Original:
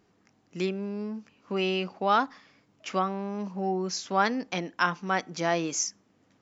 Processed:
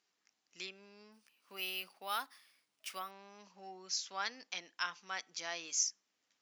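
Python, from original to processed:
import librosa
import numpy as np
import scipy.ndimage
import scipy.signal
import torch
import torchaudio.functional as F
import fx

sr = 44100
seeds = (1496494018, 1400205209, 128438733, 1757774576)

y = fx.bandpass_q(x, sr, hz=5200.0, q=0.82)
y = fx.resample_bad(y, sr, factor=3, down='none', up='hold', at=(1.12, 3.11))
y = y * librosa.db_to_amplitude(-3.0)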